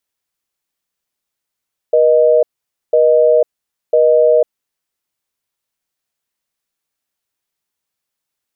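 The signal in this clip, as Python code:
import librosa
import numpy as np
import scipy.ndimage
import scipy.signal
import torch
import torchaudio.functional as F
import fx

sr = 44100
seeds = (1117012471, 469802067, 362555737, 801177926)

y = fx.call_progress(sr, length_s=2.6, kind='busy tone', level_db=-10.0)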